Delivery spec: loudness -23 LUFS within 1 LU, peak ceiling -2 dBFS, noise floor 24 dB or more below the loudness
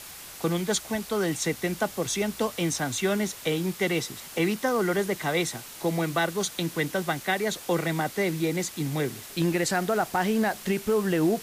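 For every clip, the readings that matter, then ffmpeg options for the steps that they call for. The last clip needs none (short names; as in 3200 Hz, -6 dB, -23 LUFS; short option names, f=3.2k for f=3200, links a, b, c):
noise floor -43 dBFS; noise floor target -52 dBFS; loudness -27.5 LUFS; peak -14.0 dBFS; loudness target -23.0 LUFS
-> -af "afftdn=nr=9:nf=-43"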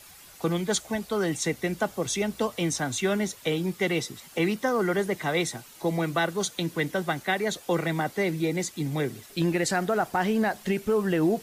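noise floor -50 dBFS; noise floor target -52 dBFS
-> -af "afftdn=nr=6:nf=-50"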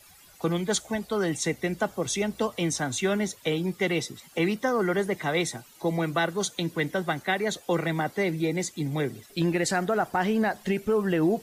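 noise floor -54 dBFS; loudness -27.5 LUFS; peak -14.0 dBFS; loudness target -23.0 LUFS
-> -af "volume=4.5dB"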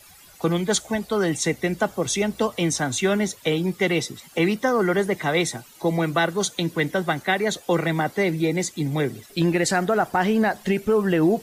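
loudness -23.0 LUFS; peak -9.5 dBFS; noise floor -49 dBFS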